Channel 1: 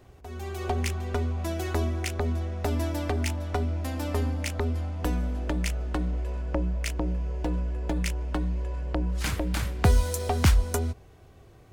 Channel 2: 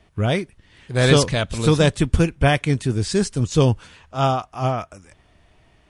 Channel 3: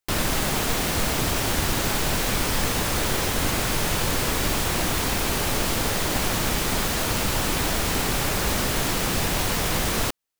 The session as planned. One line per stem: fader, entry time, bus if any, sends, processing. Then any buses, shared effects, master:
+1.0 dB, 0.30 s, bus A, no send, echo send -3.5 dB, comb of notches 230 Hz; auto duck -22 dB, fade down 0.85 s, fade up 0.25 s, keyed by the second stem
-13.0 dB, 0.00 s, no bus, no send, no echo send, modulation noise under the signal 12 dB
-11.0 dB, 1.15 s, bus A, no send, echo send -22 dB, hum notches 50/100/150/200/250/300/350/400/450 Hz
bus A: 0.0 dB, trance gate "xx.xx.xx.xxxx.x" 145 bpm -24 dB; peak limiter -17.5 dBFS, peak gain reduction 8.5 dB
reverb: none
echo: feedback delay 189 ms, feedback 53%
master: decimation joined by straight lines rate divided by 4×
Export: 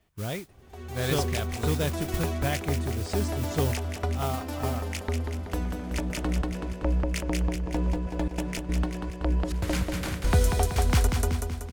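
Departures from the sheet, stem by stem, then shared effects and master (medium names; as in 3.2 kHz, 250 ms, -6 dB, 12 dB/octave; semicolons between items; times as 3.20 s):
stem 1: missing comb of notches 230 Hz; stem 3: muted; master: missing decimation joined by straight lines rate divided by 4×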